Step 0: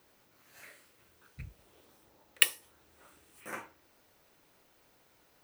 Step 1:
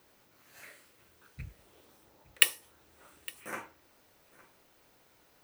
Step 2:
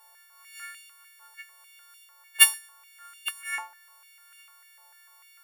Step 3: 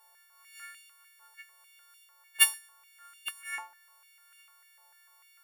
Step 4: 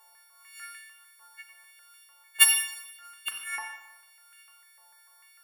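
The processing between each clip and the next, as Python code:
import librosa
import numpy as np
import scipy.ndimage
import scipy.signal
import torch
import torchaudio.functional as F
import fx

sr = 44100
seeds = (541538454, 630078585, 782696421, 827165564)

y1 = x + 10.0 ** (-21.0 / 20.0) * np.pad(x, (int(861 * sr / 1000.0), 0))[:len(x)]
y1 = y1 * 10.0 ** (1.5 / 20.0)
y2 = fx.freq_snap(y1, sr, grid_st=4)
y2 = fx.filter_held_highpass(y2, sr, hz=6.7, low_hz=890.0, high_hz=2700.0)
y2 = y2 * 10.0 ** (-3.5 / 20.0)
y3 = fx.low_shelf(y2, sr, hz=410.0, db=3.5)
y3 = y3 * 10.0 ** (-5.5 / 20.0)
y4 = fx.rev_schroeder(y3, sr, rt60_s=1.0, comb_ms=29, drr_db=5.0)
y4 = y4 * 10.0 ** (3.5 / 20.0)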